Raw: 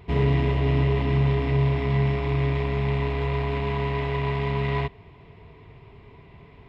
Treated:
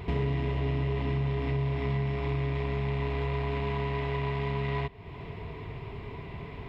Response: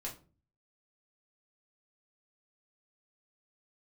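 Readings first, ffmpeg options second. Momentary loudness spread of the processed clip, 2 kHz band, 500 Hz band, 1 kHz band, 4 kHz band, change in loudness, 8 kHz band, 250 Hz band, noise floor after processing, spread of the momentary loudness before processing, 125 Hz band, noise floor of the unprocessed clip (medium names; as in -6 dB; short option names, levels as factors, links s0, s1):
11 LU, -5.5 dB, -6.0 dB, -5.5 dB, -5.5 dB, -7.0 dB, no reading, -6.5 dB, -43 dBFS, 4 LU, -6.5 dB, -50 dBFS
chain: -af "acompressor=threshold=0.01:ratio=3,volume=2.51"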